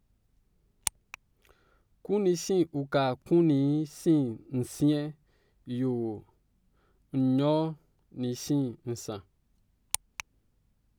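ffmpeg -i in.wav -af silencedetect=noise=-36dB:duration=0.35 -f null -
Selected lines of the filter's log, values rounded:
silence_start: 0.00
silence_end: 0.87 | silence_duration: 0.87
silence_start: 1.14
silence_end: 2.05 | silence_duration: 0.91
silence_start: 5.10
silence_end: 5.68 | silence_duration: 0.58
silence_start: 6.18
silence_end: 7.14 | silence_duration: 0.96
silence_start: 7.73
silence_end: 8.17 | silence_duration: 0.44
silence_start: 9.18
silence_end: 9.94 | silence_duration: 0.76
silence_start: 10.20
silence_end: 10.98 | silence_duration: 0.78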